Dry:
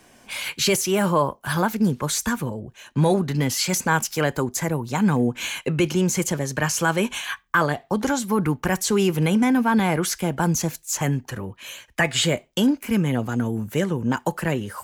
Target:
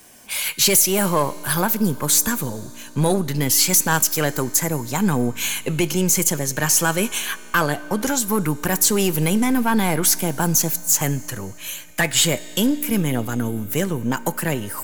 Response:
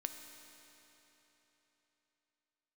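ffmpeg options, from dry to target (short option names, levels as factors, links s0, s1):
-filter_complex "[0:a]aeval=exprs='0.531*(cos(1*acos(clip(val(0)/0.531,-1,1)))-cos(1*PI/2))+0.075*(cos(2*acos(clip(val(0)/0.531,-1,1)))-cos(2*PI/2))+0.0668*(cos(3*acos(clip(val(0)/0.531,-1,1)))-cos(3*PI/2))+0.0376*(cos(5*acos(clip(val(0)/0.531,-1,1)))-cos(5*PI/2))+0.00944*(cos(6*acos(clip(val(0)/0.531,-1,1)))-cos(6*PI/2))':c=same,aemphasis=mode=production:type=50fm,asplit=2[s0][s1];[1:a]atrim=start_sample=2205[s2];[s1][s2]afir=irnorm=-1:irlink=0,volume=0.501[s3];[s0][s3]amix=inputs=2:normalize=0,volume=0.794"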